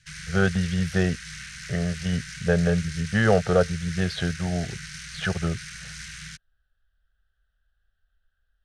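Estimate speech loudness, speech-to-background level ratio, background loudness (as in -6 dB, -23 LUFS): -25.5 LUFS, 12.0 dB, -37.5 LUFS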